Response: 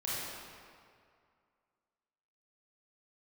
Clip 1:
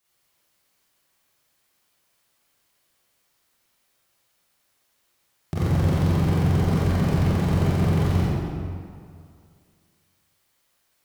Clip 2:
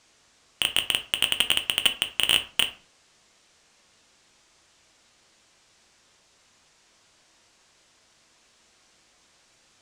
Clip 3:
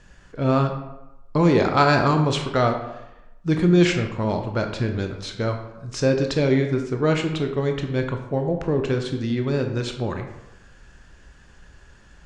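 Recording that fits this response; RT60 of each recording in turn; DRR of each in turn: 1; 2.2, 0.45, 0.95 s; -8.5, 6.0, 4.0 dB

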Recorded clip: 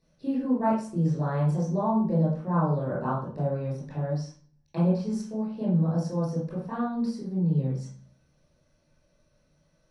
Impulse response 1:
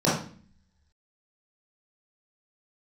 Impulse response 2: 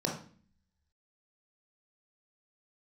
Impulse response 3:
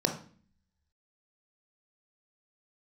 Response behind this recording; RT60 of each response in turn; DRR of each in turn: 1; 0.45, 0.45, 0.45 s; -8.5, -0.5, 4.0 dB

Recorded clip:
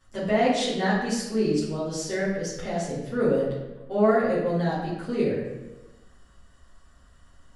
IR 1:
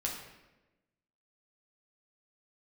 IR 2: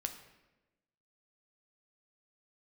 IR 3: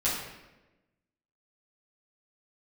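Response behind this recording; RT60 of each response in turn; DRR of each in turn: 3; 1.1, 1.1, 1.1 s; -2.5, 5.5, -10.5 dB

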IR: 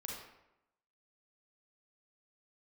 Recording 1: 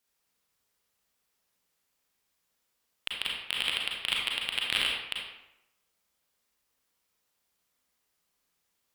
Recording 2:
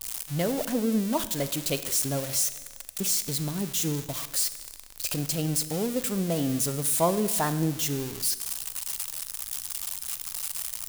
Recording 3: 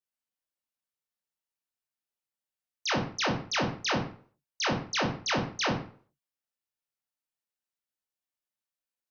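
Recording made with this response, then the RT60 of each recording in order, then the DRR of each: 1; 0.85, 1.3, 0.45 s; -2.5, 12.5, -2.5 dB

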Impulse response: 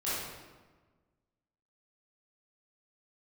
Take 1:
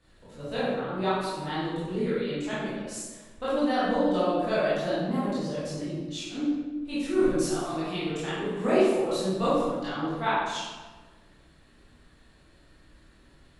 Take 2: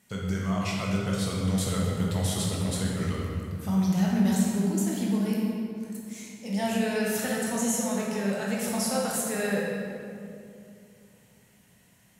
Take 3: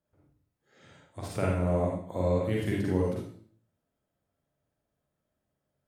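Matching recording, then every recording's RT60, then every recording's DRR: 1; 1.4, 2.6, 0.50 s; -11.5, -4.0, -4.0 dB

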